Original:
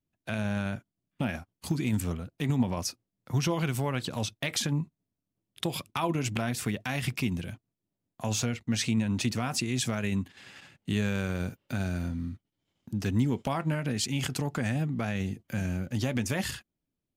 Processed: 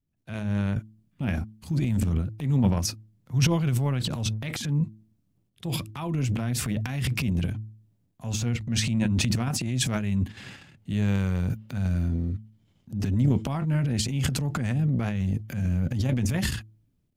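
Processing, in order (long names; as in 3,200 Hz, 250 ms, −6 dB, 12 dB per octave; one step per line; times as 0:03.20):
bass and treble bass +12 dB, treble −1 dB
hum removal 108.4 Hz, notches 3
transient designer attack −6 dB, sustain +11 dB
level −4.5 dB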